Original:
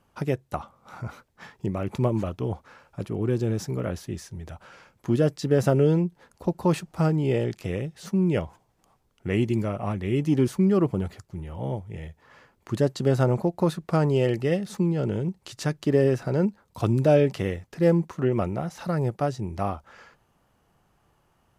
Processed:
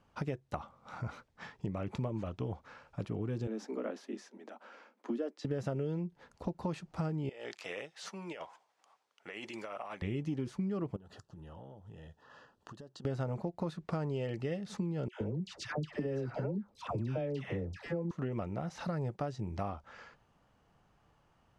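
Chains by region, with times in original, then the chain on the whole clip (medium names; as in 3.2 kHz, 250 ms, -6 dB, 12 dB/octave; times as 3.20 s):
3.47–5.45 s: steep high-pass 210 Hz 96 dB/octave + treble shelf 2.2 kHz -8 dB
7.29–10.02 s: high-pass 740 Hz + compressor with a negative ratio -39 dBFS
10.96–13.05 s: bass shelf 97 Hz -12 dB + compression 20:1, threshold -42 dBFS + Butterworth band-stop 2.2 kHz, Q 2.9
15.08–18.11 s: treble shelf 7.1 kHz -8.5 dB + compression 2.5:1, threshold -20 dBFS + phase dispersion lows, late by 130 ms, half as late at 940 Hz
whole clip: low-pass 6.2 kHz 12 dB/octave; band-stop 370 Hz, Q 12; compression, threshold -30 dBFS; trim -3 dB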